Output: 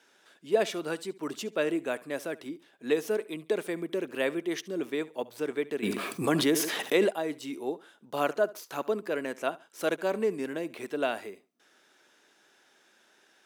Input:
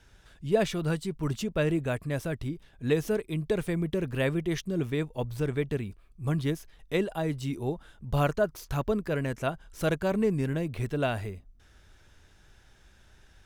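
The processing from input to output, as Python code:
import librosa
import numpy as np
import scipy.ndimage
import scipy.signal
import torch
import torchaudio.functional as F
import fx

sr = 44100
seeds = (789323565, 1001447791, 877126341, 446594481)

y = scipy.signal.sosfilt(scipy.signal.butter(4, 270.0, 'highpass', fs=sr, output='sos'), x)
y = fx.echo_feedback(y, sr, ms=70, feedback_pct=27, wet_db=-20)
y = fx.env_flatten(y, sr, amount_pct=70, at=(5.82, 7.09), fade=0.02)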